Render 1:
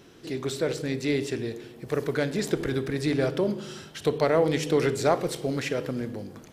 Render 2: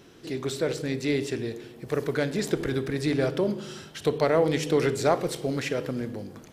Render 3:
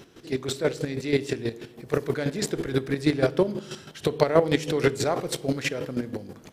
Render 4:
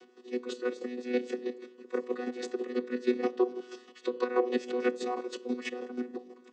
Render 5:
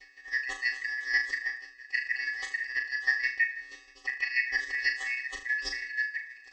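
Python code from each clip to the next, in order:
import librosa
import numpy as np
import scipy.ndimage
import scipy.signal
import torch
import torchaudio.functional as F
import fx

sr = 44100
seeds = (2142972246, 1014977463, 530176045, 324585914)

y1 = x
y2 = fx.chopper(y1, sr, hz=6.2, depth_pct=65, duty_pct=25)
y2 = y2 * 10.0 ** (5.5 / 20.0)
y3 = fx.chord_vocoder(y2, sr, chord='bare fifth', root=59)
y3 = fx.highpass(y3, sr, hz=650.0, slope=6)
y4 = fx.band_shuffle(y3, sr, order='3142')
y4 = fx.rider(y4, sr, range_db=4, speed_s=2.0)
y4 = fx.room_flutter(y4, sr, wall_m=6.6, rt60_s=0.39)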